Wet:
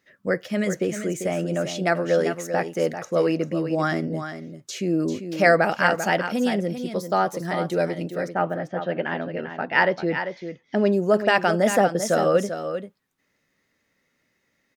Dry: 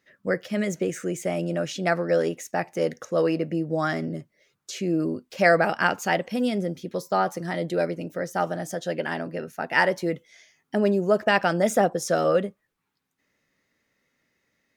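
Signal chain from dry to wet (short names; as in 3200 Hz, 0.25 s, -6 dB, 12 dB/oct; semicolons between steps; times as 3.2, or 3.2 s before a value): 8.27–10.91 LPF 2500 Hz -> 6300 Hz 24 dB/oct; echo 0.393 s -9 dB; gain +1.5 dB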